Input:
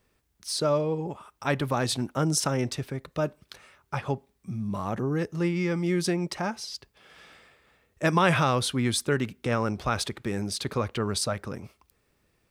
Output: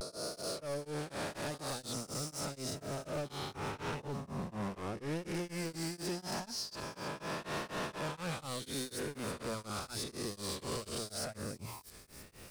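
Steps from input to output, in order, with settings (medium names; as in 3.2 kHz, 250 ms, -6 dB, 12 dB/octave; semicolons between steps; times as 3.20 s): reverse spectral sustain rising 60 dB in 2.78 s; recorder AGC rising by 7.7 dB/s; hum notches 60/120 Hz; vibrato 0.82 Hz 88 cents; saturation -21 dBFS, distortion -8 dB; reverse; compression, threshold -35 dBFS, peak gain reduction 11.5 dB; reverse; dynamic bell 1.5 kHz, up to -4 dB, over -50 dBFS, Q 0.83; peak limiter -37 dBFS, peak gain reduction 8.5 dB; feedback echo behind a high-pass 325 ms, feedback 66%, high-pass 5.1 kHz, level -8.5 dB; tremolo of two beating tones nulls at 4.1 Hz; trim +4.5 dB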